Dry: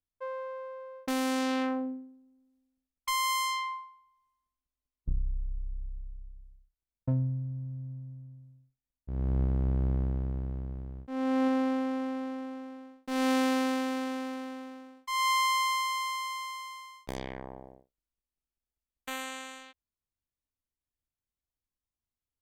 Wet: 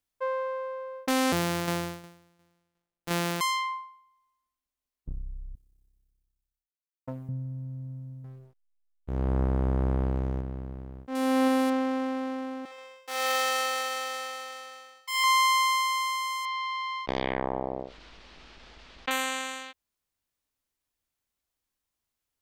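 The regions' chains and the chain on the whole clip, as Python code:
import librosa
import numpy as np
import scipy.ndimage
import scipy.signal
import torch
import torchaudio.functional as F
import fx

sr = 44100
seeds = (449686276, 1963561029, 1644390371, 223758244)

y = fx.chain(x, sr, fx.sample_sort(block=256),
    fx.tremolo_shape(shape='saw_down', hz=2.8, depth_pct=50), at=(1.32, 3.41))
y = fx.chain(y, sr, fx.tilt_eq(slope=3.0),
    fx.power_curve(exponent=1.4), at=(5.55, 7.29))
y = fx.chain(y, sr, fx.leveller(passes=1),
    fx.backlash(play_db=-44.0), at=(8.24, 10.41))
y = fx.chain(y, sr, fx.crossing_spikes(level_db=-28.5),
    fx.lowpass(hz=11000.0, slope=12), at=(11.15, 11.7))
y = fx.chain(y, sr, fx.lower_of_two(delay_ms=2.3),
    fx.highpass(hz=640.0, slope=12),
    fx.echo_feedback(ms=63, feedback_pct=45, wet_db=-6), at=(12.65, 15.24))
y = fx.chain(y, sr, fx.lowpass(hz=4300.0, slope=24),
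    fx.env_flatten(amount_pct=70), at=(16.45, 19.11))
y = fx.low_shelf(y, sr, hz=200.0, db=-9.0)
y = fx.rider(y, sr, range_db=4, speed_s=2.0)
y = F.gain(torch.from_numpy(y), 5.0).numpy()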